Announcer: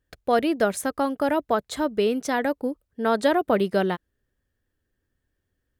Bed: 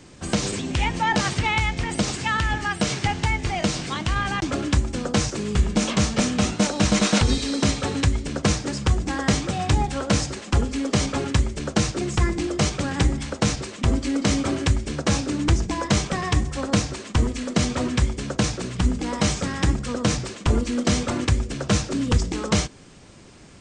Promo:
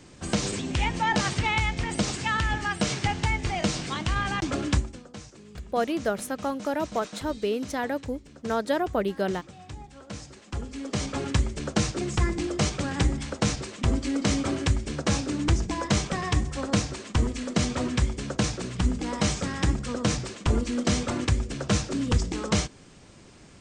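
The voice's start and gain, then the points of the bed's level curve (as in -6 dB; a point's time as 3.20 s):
5.45 s, -5.0 dB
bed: 4.76 s -3 dB
5.06 s -21 dB
9.91 s -21 dB
11.31 s -3.5 dB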